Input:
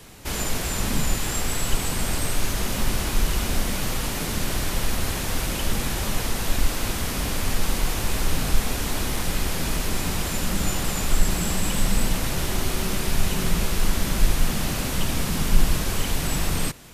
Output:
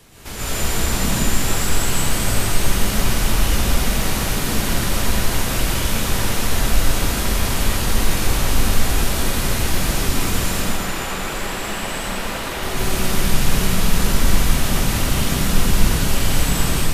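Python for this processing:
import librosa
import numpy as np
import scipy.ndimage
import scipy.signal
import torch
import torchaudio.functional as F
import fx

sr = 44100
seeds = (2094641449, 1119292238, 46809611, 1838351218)

y = fx.bass_treble(x, sr, bass_db=-14, treble_db=-9, at=(10.48, 12.63))
y = fx.rev_plate(y, sr, seeds[0], rt60_s=2.4, hf_ratio=0.9, predelay_ms=105, drr_db=-9.0)
y = y * 10.0 ** (-3.5 / 20.0)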